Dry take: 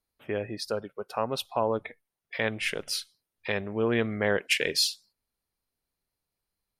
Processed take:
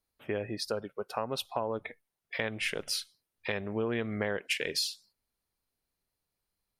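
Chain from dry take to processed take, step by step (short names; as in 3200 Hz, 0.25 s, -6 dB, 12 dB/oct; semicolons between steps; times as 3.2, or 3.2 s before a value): compressor, threshold -28 dBFS, peak gain reduction 8.5 dB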